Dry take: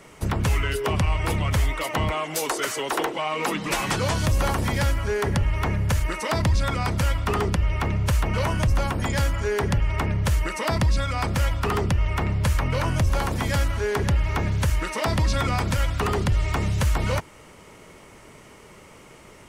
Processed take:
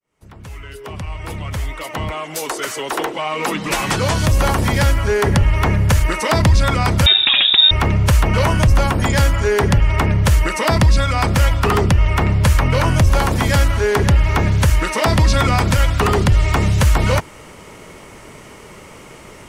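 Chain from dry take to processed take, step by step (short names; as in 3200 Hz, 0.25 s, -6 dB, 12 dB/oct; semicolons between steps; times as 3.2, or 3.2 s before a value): opening faded in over 5.30 s; 7.06–7.71 inverted band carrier 3700 Hz; gain +8.5 dB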